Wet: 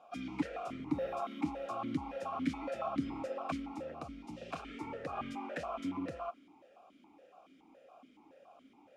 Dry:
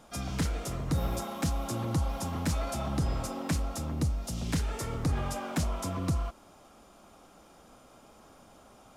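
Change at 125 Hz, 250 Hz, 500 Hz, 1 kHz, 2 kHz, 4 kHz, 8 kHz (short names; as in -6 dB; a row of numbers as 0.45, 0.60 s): -18.5, -3.5, -1.5, -2.0, -5.5, -11.5, -22.5 dB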